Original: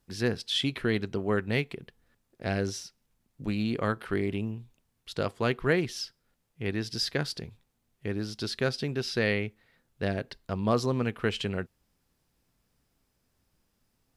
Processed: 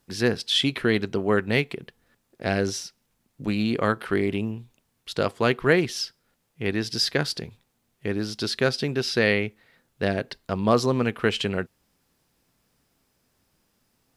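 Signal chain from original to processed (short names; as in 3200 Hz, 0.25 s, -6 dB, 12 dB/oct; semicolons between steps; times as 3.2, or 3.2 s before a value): low shelf 89 Hz -10.5 dB; gain +6.5 dB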